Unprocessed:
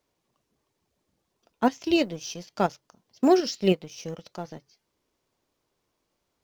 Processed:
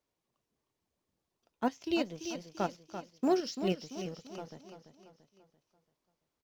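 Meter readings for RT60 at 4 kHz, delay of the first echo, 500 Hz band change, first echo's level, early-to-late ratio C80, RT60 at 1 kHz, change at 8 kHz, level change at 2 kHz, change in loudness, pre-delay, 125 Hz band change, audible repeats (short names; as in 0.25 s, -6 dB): none, 0.339 s, -9.0 dB, -9.5 dB, none, none, n/a, -8.5 dB, -10.0 dB, none, -8.5 dB, 4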